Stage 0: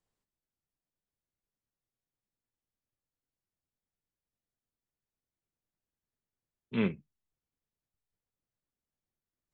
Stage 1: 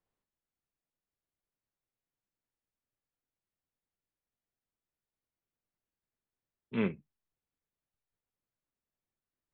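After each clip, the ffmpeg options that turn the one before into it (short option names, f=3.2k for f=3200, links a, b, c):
-af "bass=f=250:g=-3,treble=f=4k:g=-14"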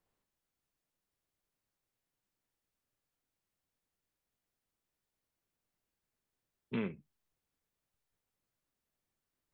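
-af "acompressor=threshold=-38dB:ratio=6,volume=4.5dB"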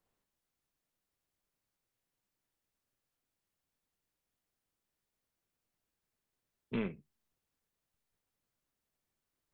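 -af "tremolo=f=230:d=0.4,volume=2dB"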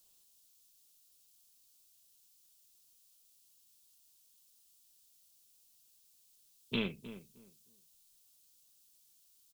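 -filter_complex "[0:a]aexciter=amount=6.4:drive=7.8:freq=2.9k,asplit=2[a][b];[b]adelay=310,lowpass=f=1.3k:p=1,volume=-12.5dB,asplit=2[c][d];[d]adelay=310,lowpass=f=1.3k:p=1,volume=0.21,asplit=2[e][f];[f]adelay=310,lowpass=f=1.3k:p=1,volume=0.21[g];[a][c][e][g]amix=inputs=4:normalize=0"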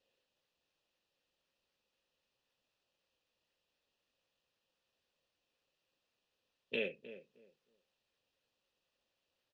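-filter_complex "[0:a]asplit=3[a][b][c];[a]bandpass=f=530:t=q:w=8,volume=0dB[d];[b]bandpass=f=1.84k:t=q:w=8,volume=-6dB[e];[c]bandpass=f=2.48k:t=q:w=8,volume=-9dB[f];[d][e][f]amix=inputs=3:normalize=0,acrossover=split=770|6000[g][h][i];[i]acrusher=samples=16:mix=1:aa=0.000001:lfo=1:lforange=9.6:lforate=3.9[j];[g][h][j]amix=inputs=3:normalize=0,volume=11dB"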